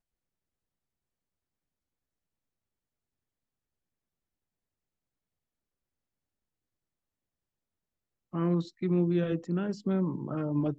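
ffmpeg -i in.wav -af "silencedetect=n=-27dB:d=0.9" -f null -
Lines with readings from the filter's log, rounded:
silence_start: 0.00
silence_end: 8.35 | silence_duration: 8.35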